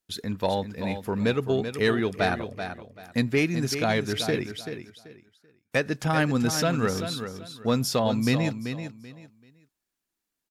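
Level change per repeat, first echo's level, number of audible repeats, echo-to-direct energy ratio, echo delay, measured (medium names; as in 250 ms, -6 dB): -12.5 dB, -9.0 dB, 3, -8.5 dB, 385 ms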